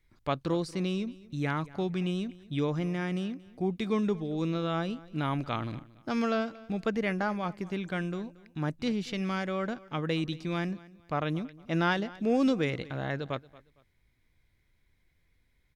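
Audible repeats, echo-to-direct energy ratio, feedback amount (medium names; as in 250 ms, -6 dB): 2, -20.0 dB, 29%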